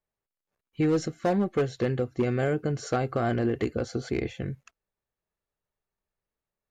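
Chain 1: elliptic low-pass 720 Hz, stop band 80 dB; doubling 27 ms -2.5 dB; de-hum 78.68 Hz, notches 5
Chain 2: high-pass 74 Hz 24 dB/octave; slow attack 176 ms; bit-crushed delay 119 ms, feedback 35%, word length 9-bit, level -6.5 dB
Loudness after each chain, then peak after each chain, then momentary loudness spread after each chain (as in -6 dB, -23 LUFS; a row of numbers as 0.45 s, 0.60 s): -28.0 LUFS, -30.0 LUFS; -13.5 dBFS, -12.5 dBFS; 6 LU, 11 LU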